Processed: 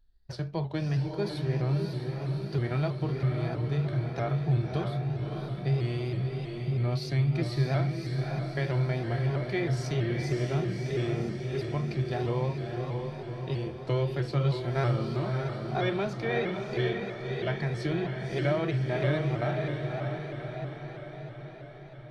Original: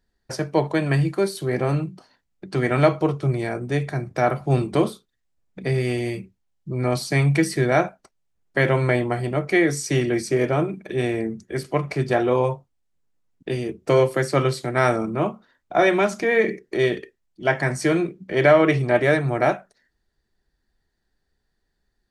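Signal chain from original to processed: ten-band EQ 125 Hz -3 dB, 250 Hz -10 dB, 500 Hz -7 dB, 1000 Hz -4 dB, 2000 Hz -5 dB, 4000 Hz +10 dB, 8000 Hz -10 dB; harmonic-percussive split percussive -5 dB; tilt -2.5 dB/oct; compressor 2:1, threshold -26 dBFS, peak gain reduction 6.5 dB; on a send: diffused feedback echo 0.58 s, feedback 62%, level -4 dB; on the sum: shaped vibrato saw up 3.1 Hz, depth 100 cents; gain -2.5 dB

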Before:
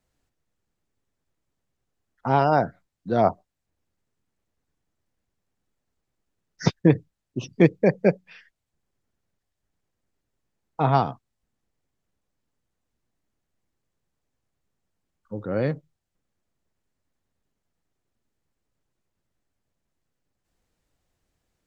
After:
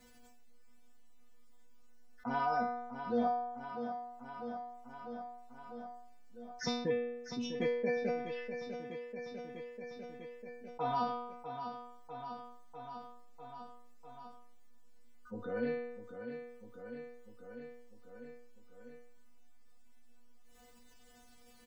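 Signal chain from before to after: metallic resonator 240 Hz, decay 0.55 s, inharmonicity 0.002; feedback echo 0.648 s, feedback 58%, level -17 dB; fast leveller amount 50%; gain +1.5 dB

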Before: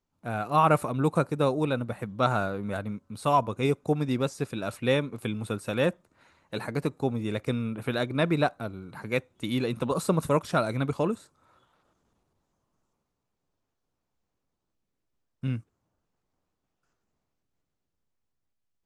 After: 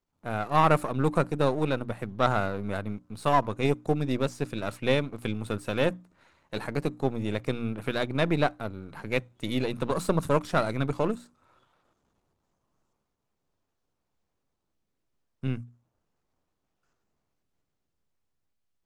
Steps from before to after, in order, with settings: half-wave gain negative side -7 dB; high shelf 10000 Hz -5 dB; notches 60/120/180/240/300 Hz; gain +2 dB

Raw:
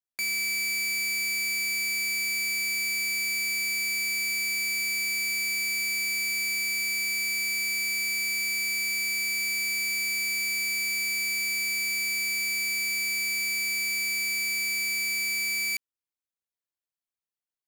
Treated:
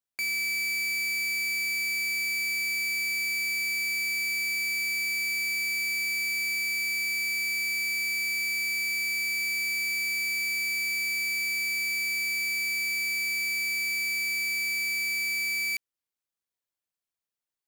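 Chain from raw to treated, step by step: overloaded stage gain 28.5 dB; gain +1.5 dB

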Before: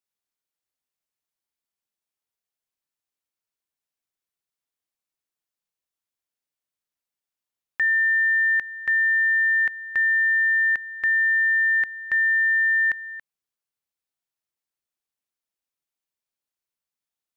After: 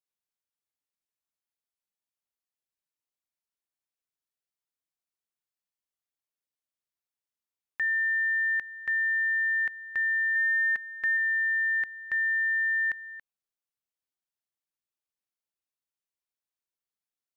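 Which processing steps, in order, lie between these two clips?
10.35–11.17 comb 4.6 ms, depth 57%; gain -6.5 dB

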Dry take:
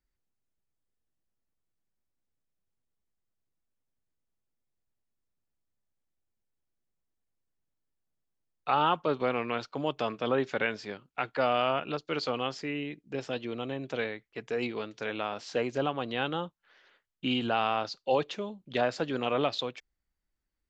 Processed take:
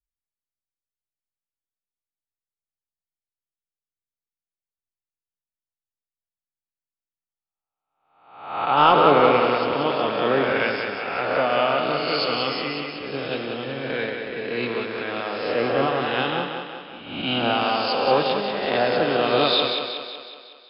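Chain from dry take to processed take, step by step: spectral swells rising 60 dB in 1.22 s; in parallel at -2 dB: limiter -20.5 dBFS, peak gain reduction 9.5 dB; 8.77–9.38 on the sum: sample leveller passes 1; brick-wall FIR low-pass 5300 Hz; on a send: thinning echo 0.185 s, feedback 72%, high-pass 150 Hz, level -4 dB; on the sum: three-band expander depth 70%

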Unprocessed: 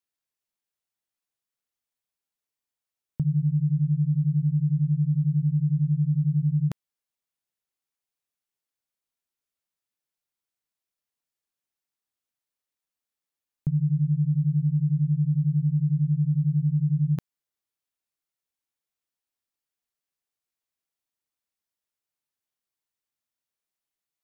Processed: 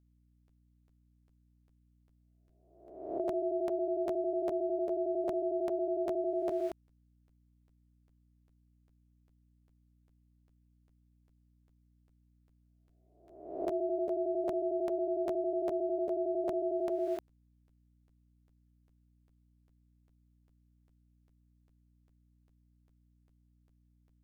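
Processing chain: spectral swells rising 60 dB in 0.84 s; ring modulator 510 Hz; hum 60 Hz, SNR 30 dB; crackling interface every 0.40 s, samples 512, repeat, from 0.47; gain -8 dB

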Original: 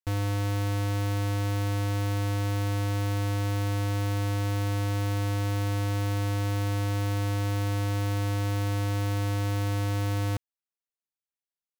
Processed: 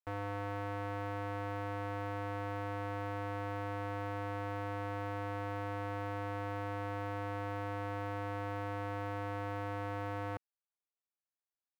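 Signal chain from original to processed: three-band isolator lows -14 dB, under 400 Hz, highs -22 dB, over 2100 Hz; gain -2 dB

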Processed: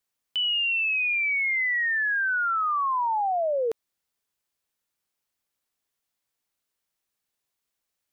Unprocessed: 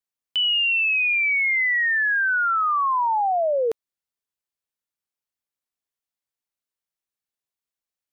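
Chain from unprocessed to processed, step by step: limiter -29.5 dBFS, peak gain reduction 12 dB; gain +7.5 dB

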